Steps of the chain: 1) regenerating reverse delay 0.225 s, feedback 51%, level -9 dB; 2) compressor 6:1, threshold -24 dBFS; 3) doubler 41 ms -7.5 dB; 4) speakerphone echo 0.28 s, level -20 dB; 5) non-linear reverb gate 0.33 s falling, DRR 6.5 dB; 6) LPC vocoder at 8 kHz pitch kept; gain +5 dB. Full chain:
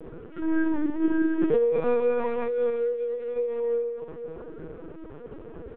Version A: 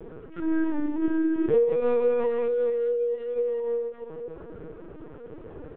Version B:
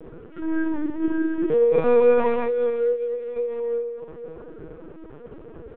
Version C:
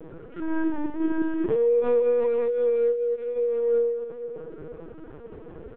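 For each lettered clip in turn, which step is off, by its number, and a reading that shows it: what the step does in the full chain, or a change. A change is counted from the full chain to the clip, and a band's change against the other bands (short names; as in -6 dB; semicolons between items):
5, momentary loudness spread change +1 LU; 2, momentary loudness spread change +3 LU; 3, 500 Hz band +5.0 dB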